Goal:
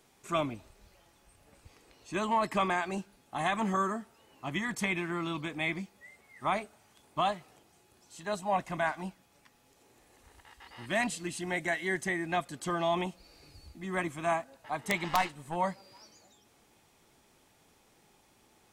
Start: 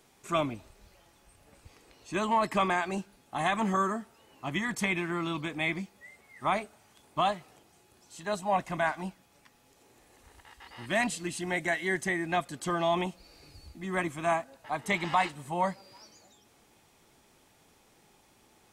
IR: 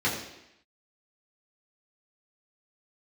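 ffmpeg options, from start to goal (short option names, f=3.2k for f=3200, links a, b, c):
-filter_complex "[0:a]asettb=1/sr,asplit=3[a][b][c];[a]atrim=end=15.084[d];[b]atrim=start=15.08:end=15.56,asetpts=PTS-STARTPTS,afade=t=in:d=0.004:c=qsin,afade=t=out:st=0.476:d=0.004:c=qsin,aeval=exprs='0.2*(cos(1*acos(clip(val(0)/0.2,-1,1)))-cos(1*PI/2))+0.00631*(cos(7*acos(clip(val(0)/0.2,-1,1)))-cos(7*PI/2))+0.0126*(cos(8*acos(clip(val(0)/0.2,-1,1)))-cos(8*PI/2))':c=same[e];[c]atrim=start=15.556[f];[d][e]acrossfade=d=0.004:c1=hsin:c2=qsin[g];[g][f]acrossfade=d=0.004:c1=qsin:c2=hsin,aeval=exprs='(mod(5.01*val(0)+1,2)-1)/5.01':c=same,volume=-2dB"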